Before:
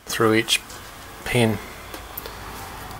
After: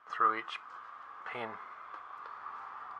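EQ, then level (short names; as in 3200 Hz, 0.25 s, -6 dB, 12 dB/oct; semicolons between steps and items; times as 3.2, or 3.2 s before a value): band-pass 1200 Hz, Q 5.6; air absorption 83 m; 0.0 dB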